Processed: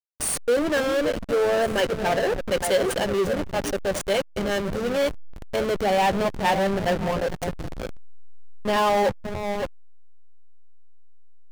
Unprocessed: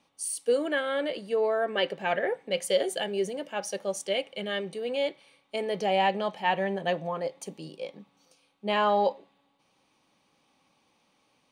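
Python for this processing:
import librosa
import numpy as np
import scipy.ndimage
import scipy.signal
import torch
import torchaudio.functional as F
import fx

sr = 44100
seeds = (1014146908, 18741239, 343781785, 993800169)

p1 = fx.high_shelf(x, sr, hz=10000.0, db=5.5)
p2 = p1 + fx.echo_stepped(p1, sr, ms=282, hz=230.0, octaves=1.4, feedback_pct=70, wet_db=-5, dry=0)
p3 = fx.backlash(p2, sr, play_db=-26.0)
y = fx.power_curve(p3, sr, exponent=0.5)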